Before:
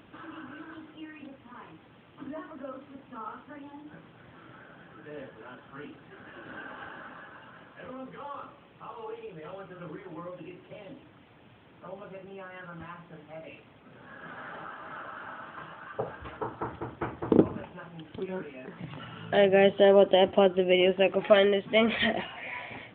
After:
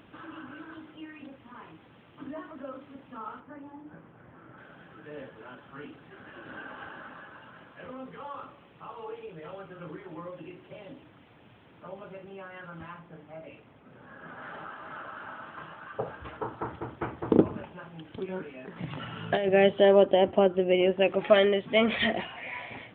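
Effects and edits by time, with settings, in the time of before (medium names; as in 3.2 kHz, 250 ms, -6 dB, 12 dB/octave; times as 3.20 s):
3.40–4.58 s: low-pass 1.7 kHz
12.99–14.42 s: treble shelf 3 kHz -9.5 dB
18.76–19.49 s: compressor with a negative ratio -26 dBFS
20.05–21.02 s: treble shelf 2.5 kHz -9.5 dB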